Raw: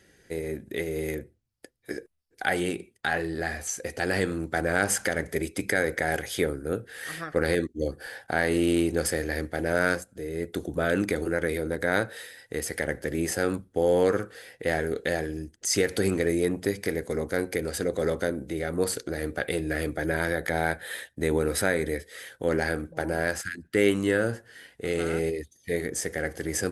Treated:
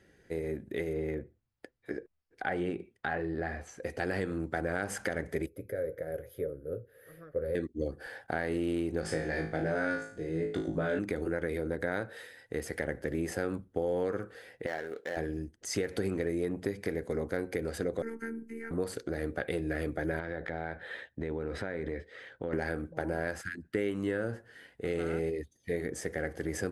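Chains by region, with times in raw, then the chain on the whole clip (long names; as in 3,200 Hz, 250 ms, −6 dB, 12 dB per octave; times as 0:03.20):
0:00.93–0:03.83: low-pass filter 2,100 Hz 6 dB per octave + one half of a high-frequency compander encoder only
0:05.46–0:07.55: drawn EQ curve 110 Hz 0 dB, 180 Hz −8 dB, 310 Hz −9 dB, 550 Hz +4 dB, 800 Hz −20 dB, 1,200 Hz −12 dB, 2,900 Hz −18 dB, 8,400 Hz −18 dB, 12,000 Hz +6 dB + flanger 1.8 Hz, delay 6 ms, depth 2.1 ms, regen −51%
0:09.01–0:10.99: low-pass filter 8,700 Hz 24 dB per octave + flutter between parallel walls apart 3.2 metres, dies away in 0.38 s
0:14.66–0:15.17: running median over 15 samples + high-pass filter 1,000 Hz 6 dB per octave
0:18.02–0:18.71: phaser with its sweep stopped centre 730 Hz, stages 8 + phases set to zero 227 Hz + Butterworth band-reject 640 Hz, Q 1.7
0:20.19–0:22.53: low-pass filter 3,900 Hz + downward compressor, threshold −28 dBFS
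whole clip: high-shelf EQ 3,200 Hz −11.5 dB; downward compressor 5 to 1, threshold −26 dBFS; level −2 dB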